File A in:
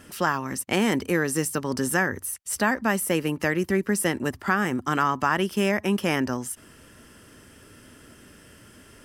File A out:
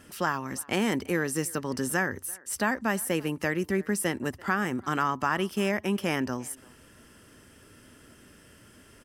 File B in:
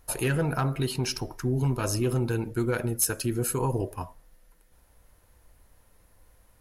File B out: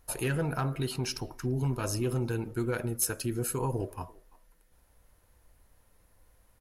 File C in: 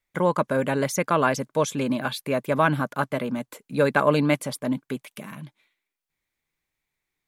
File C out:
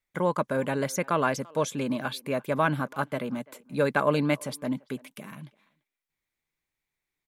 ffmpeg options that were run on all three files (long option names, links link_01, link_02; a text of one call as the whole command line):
ffmpeg -i in.wav -filter_complex "[0:a]asplit=2[link_01][link_02];[link_02]adelay=340,highpass=300,lowpass=3400,asoftclip=type=hard:threshold=-14dB,volume=-23dB[link_03];[link_01][link_03]amix=inputs=2:normalize=0,volume=-4dB" out.wav